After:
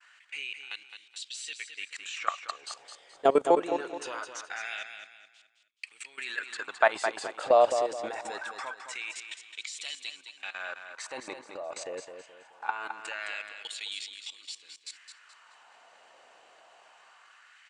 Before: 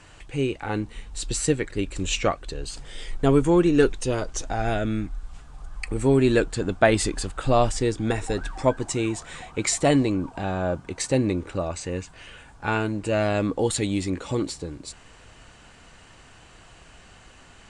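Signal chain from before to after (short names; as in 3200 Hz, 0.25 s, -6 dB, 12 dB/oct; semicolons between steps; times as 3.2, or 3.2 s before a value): LFO high-pass sine 0.23 Hz 580–3400 Hz; level quantiser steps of 19 dB; expander -54 dBFS; air absorption 50 m; feedback echo 0.213 s, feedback 34%, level -8 dB; gain +1 dB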